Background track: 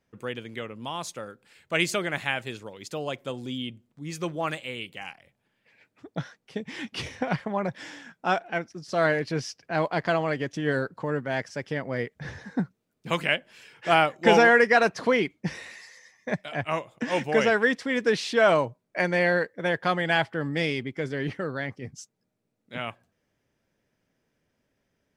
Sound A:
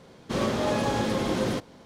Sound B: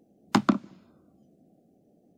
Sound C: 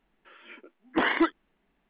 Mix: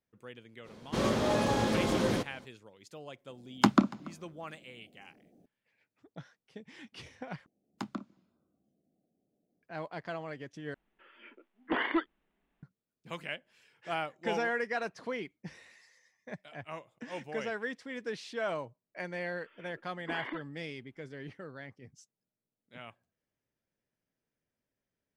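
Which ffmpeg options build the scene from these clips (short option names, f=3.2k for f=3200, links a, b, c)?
-filter_complex "[2:a]asplit=2[a][b];[3:a]asplit=2[c][d];[0:a]volume=-14.5dB[e];[a]asplit=2[f][g];[g]adelay=285.7,volume=-21dB,highshelf=f=4k:g=-6.43[h];[f][h]amix=inputs=2:normalize=0[i];[d]acompressor=threshold=-25dB:ratio=6:attack=3.2:release=140:knee=1:detection=peak[j];[e]asplit=3[k][l][m];[k]atrim=end=7.464[n];[b]atrim=end=2.17,asetpts=PTS-STARTPTS,volume=-17dB[o];[l]atrim=start=9.626:end=10.744[p];[c]atrim=end=1.89,asetpts=PTS-STARTPTS,volume=-6.5dB[q];[m]atrim=start=12.626[r];[1:a]atrim=end=1.85,asetpts=PTS-STARTPTS,volume=-2.5dB,afade=t=in:d=0.05,afade=t=out:st=1.8:d=0.05,adelay=630[s];[i]atrim=end=2.17,asetpts=PTS-STARTPTS,volume=-1dB,afade=t=in:d=0.004:c=hsin,afade=t=out:st=2.166:d=0.004:c=hsin,adelay=145089S[t];[j]atrim=end=1.89,asetpts=PTS-STARTPTS,volume=-10dB,afade=t=in:d=0.004:c=hsin,afade=t=out:st=1.886:d=0.004:c=hsin,adelay=19120[u];[n][o]acrossfade=d=0.004:c1=hsin:c2=hsin[v];[v][p]acrossfade=d=0.004:c1=hsin:c2=hsin[w];[w][q]acrossfade=d=0.004:c1=hsin:c2=hsin[x];[x][r]acrossfade=d=0.004:c1=hsin:c2=hsin[y];[y][s][t][u]amix=inputs=4:normalize=0"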